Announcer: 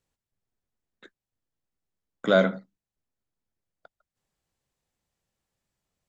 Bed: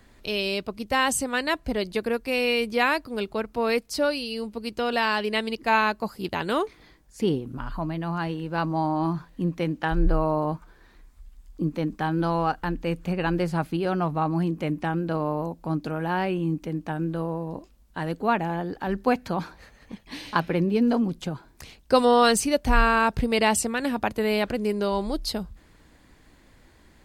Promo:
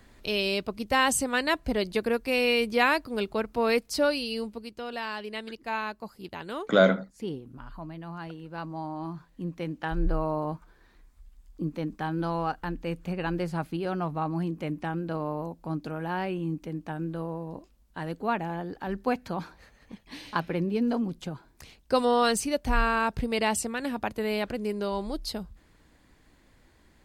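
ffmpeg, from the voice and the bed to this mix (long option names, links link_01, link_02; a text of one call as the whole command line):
ffmpeg -i stem1.wav -i stem2.wav -filter_complex "[0:a]adelay=4450,volume=0.5dB[link_01];[1:a]volume=5dB,afade=type=out:start_time=4.38:duration=0.32:silence=0.316228,afade=type=in:start_time=9.12:duration=0.93:silence=0.530884[link_02];[link_01][link_02]amix=inputs=2:normalize=0" out.wav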